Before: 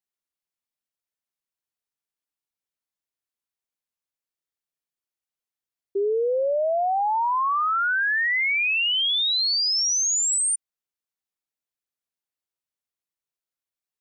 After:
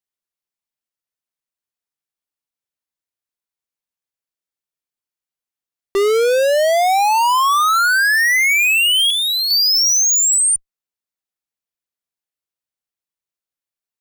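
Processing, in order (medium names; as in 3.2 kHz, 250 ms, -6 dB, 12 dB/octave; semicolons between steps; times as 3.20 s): 9.10–9.51 s: low-pass 1.3 kHz 12 dB/octave; in parallel at -4.5 dB: fuzz box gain 55 dB, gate -53 dBFS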